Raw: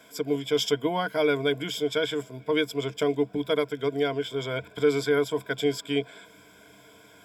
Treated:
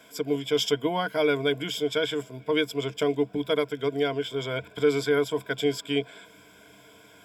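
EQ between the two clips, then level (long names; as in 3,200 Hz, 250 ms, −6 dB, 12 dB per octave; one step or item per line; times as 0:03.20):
parametric band 2,800 Hz +4.5 dB 0.24 octaves
0.0 dB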